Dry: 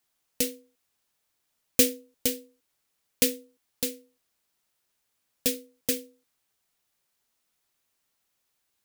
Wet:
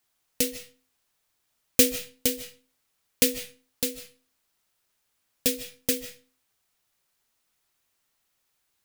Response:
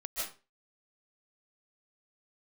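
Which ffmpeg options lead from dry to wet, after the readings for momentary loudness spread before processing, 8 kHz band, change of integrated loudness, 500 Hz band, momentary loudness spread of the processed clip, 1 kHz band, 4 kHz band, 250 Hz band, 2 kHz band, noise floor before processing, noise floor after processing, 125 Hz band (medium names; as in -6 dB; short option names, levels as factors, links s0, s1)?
10 LU, +2.0 dB, +1.5 dB, +1.5 dB, 22 LU, +2.5 dB, +2.5 dB, +1.5 dB, +3.0 dB, -77 dBFS, -75 dBFS, +3.0 dB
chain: -filter_complex "[0:a]asplit=2[s0][s1];[s1]equalizer=f=125:t=o:w=1:g=7,equalizer=f=250:t=o:w=1:g=-12,equalizer=f=500:t=o:w=1:g=-11[s2];[1:a]atrim=start_sample=2205,highshelf=f=3600:g=-10[s3];[s2][s3]afir=irnorm=-1:irlink=0,volume=0.447[s4];[s0][s4]amix=inputs=2:normalize=0,volume=1.12"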